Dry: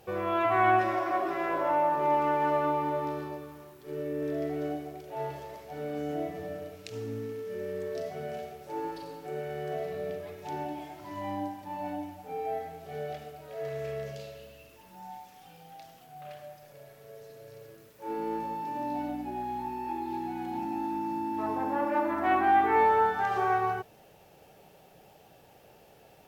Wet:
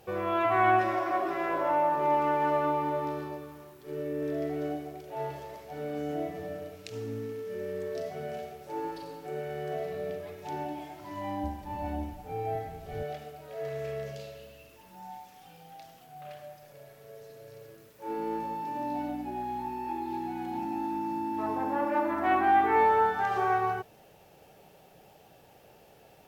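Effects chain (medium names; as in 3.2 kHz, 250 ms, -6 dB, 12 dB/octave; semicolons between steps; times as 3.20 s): 11.43–13.03 s: octave divider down 2 oct, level +3 dB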